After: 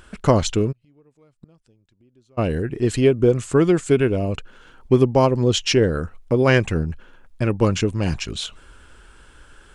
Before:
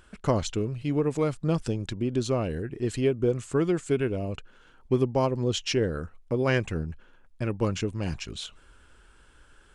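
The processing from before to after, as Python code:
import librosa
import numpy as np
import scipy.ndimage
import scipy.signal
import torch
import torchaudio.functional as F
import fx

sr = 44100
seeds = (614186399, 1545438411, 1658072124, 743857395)

y = fx.gate_flip(x, sr, shuts_db=-29.0, range_db=-38, at=(0.71, 2.37), fade=0.02)
y = F.gain(torch.from_numpy(y), 8.5).numpy()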